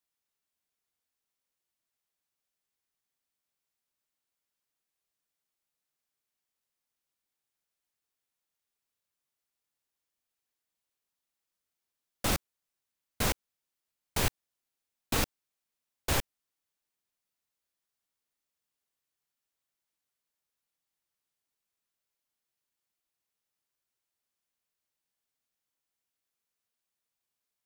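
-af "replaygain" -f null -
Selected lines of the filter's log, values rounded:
track_gain = +64.0 dB
track_peak = 0.137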